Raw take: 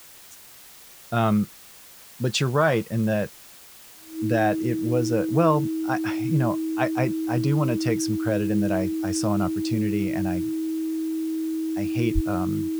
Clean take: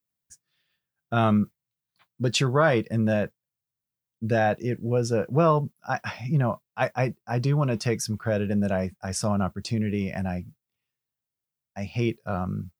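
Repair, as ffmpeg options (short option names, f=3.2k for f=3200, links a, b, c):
-filter_complex "[0:a]bandreject=f=320:w=30,asplit=3[a][b][c];[a]afade=t=out:st=12.14:d=0.02[d];[b]highpass=f=140:w=0.5412,highpass=f=140:w=1.3066,afade=t=in:st=12.14:d=0.02,afade=t=out:st=12.26:d=0.02[e];[c]afade=t=in:st=12.26:d=0.02[f];[d][e][f]amix=inputs=3:normalize=0,afwtdn=0.0045"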